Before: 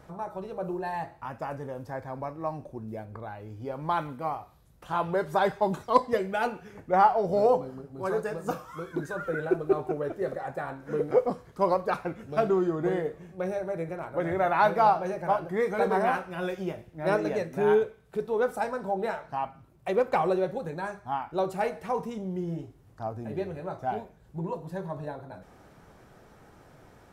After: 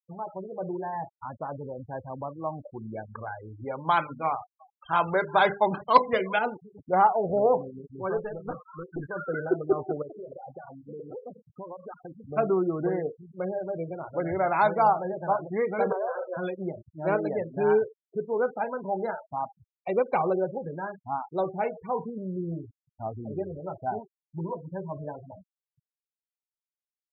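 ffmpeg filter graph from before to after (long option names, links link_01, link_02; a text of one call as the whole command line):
ffmpeg -i in.wav -filter_complex "[0:a]asettb=1/sr,asplit=3[link_01][link_02][link_03];[link_01]atrim=end=2.584[link_04];[link_02]atrim=start=2.58:end=6.39,asetpts=PTS-STARTPTS,afade=type=in:duration=0.004:curve=qsin,afade=type=out:start_time=3.806:duration=0.004:curve=qsin,equalizer=frequency=2300:width_type=o:width=2.2:gain=10.5,bandreject=frequency=50:width_type=h:width=6,bandreject=frequency=100:width_type=h:width=6,bandreject=frequency=150:width_type=h:width=6,bandreject=frequency=200:width_type=h:width=6,bandreject=frequency=250:width_type=h:width=6,bandreject=frequency=300:width_type=h:width=6,bandreject=frequency=350:width_type=h:width=6,bandreject=frequency=400:width_type=h:width=6,bandreject=frequency=450:width_type=h:width=6,bandreject=frequency=500:width_type=h:width=6,aecho=1:1:357:0.0668,atrim=end_sample=168021[link_05];[link_03]atrim=start=6.386[link_06];[link_04][link_05]acrossfade=duration=0.004:curve1=hsin:curve2=qsin[link_07];[link_07][link_06]acrossfade=duration=0.004:curve1=qsin:curve2=hsin,asettb=1/sr,asplit=3[link_08][link_09][link_10];[link_08]atrim=end=8.174[link_11];[link_09]atrim=start=8.17:end=9.09,asetpts=PTS-STARTPTS,afade=type=in:duration=0.004:curve=qsin,afade=type=out:start_time=0.916:duration=0.004:curve=qsin,asubboost=boost=5.5:cutoff=150,aeval=exprs='(tanh(17.8*val(0)+0.35)-tanh(0.35))/17.8':channel_layout=same[link_12];[link_10]atrim=start=9.086[link_13];[link_11][link_12]acrossfade=duration=0.004:curve1=hsin:curve2=qsin[link_14];[link_14][link_13]acrossfade=duration=0.004:curve1=qsin:curve2=hsin,asettb=1/sr,asplit=3[link_15][link_16][link_17];[link_15]atrim=end=10.024[link_18];[link_16]atrim=start=10.02:end=12.26,asetpts=PTS-STARTPTS,afade=type=in:duration=0.004:curve=qsin,afade=type=out:start_time=2.236:duration=0.004:curve=qsin,bandreject=frequency=213.7:width_type=h:width=4,bandreject=frequency=427.4:width_type=h:width=4,acompressor=threshold=-37dB:ratio=6:attack=3.2:release=140:knee=1:detection=peak[link_19];[link_17]atrim=start=12.256[link_20];[link_18][link_19]acrossfade=duration=0.004:curve1=hsin:curve2=qsin[link_21];[link_21][link_20]acrossfade=duration=0.004:curve1=qsin:curve2=hsin,asettb=1/sr,asplit=3[link_22][link_23][link_24];[link_22]atrim=end=15.924[link_25];[link_23]atrim=start=15.92:end=16.37,asetpts=PTS-STARTPTS,afade=type=in:duration=0.004:curve=qsin,afade=type=out:start_time=0.446:duration=0.004:curve=qsin,acompressor=threshold=-33dB:ratio=4:attack=3.2:release=140:knee=1:detection=peak,highpass=frequency=510:width_type=q:width=5.3,bandreject=frequency=810:width=6.3[link_26];[link_24]atrim=start=16.366[link_27];[link_25][link_26]acrossfade=duration=0.004:curve1=hsin:curve2=qsin[link_28];[link_28][link_27]acrossfade=duration=0.004:curve1=qsin:curve2=hsin,afftfilt=real='re*gte(hypot(re,im),0.0251)':imag='im*gte(hypot(re,im),0.0251)':win_size=1024:overlap=0.75,bandreject=frequency=1800:width=10" out.wav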